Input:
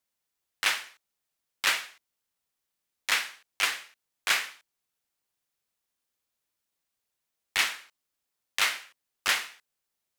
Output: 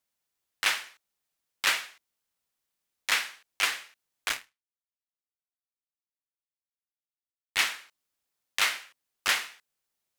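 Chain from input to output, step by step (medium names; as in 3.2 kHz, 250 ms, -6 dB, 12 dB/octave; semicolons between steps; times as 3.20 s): 4.29–7.57 s: power-law waveshaper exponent 2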